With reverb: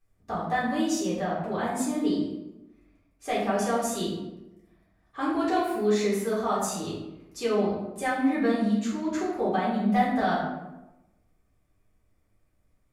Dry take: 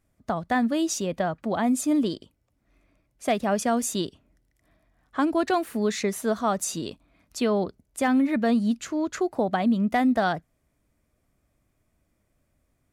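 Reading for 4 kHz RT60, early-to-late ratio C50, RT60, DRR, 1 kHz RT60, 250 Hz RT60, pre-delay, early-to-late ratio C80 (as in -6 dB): 0.60 s, 1.5 dB, 1.0 s, -9.0 dB, 0.95 s, 1.1 s, 3 ms, 4.5 dB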